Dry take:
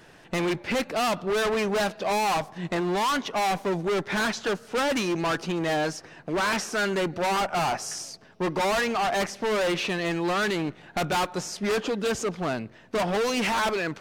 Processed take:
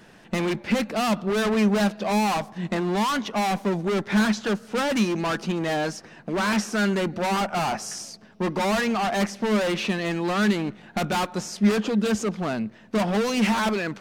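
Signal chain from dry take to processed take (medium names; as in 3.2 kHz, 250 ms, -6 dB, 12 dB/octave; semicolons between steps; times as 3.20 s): peaking EQ 210 Hz +13.5 dB 0.26 oct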